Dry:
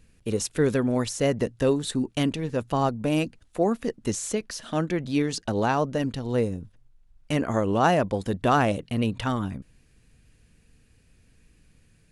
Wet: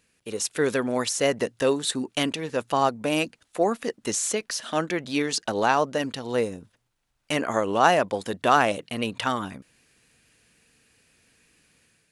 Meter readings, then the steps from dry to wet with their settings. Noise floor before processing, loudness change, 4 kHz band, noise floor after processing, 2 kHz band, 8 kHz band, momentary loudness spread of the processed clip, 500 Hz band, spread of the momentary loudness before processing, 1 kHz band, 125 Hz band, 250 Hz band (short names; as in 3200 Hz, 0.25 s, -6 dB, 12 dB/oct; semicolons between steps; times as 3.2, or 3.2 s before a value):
-60 dBFS, +1.0 dB, +5.5 dB, -72 dBFS, +5.0 dB, +5.0 dB, 9 LU, +1.0 dB, 8 LU, +3.5 dB, -8.5 dB, -3.5 dB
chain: AGC gain up to 6 dB; HPF 690 Hz 6 dB/oct